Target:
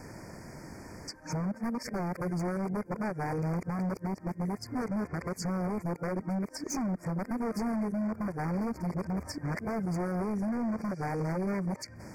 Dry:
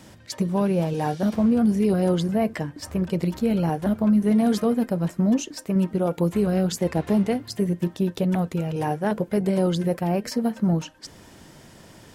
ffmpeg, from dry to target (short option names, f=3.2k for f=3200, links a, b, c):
-af "areverse,highshelf=f=4.1k:g=-6.5,acompressor=threshold=-29dB:ratio=12,aeval=exprs='0.0335*(abs(mod(val(0)/0.0335+3,4)-2)-1)':c=same,asuperstop=centerf=3300:order=20:qfactor=1.6,volume=2.5dB"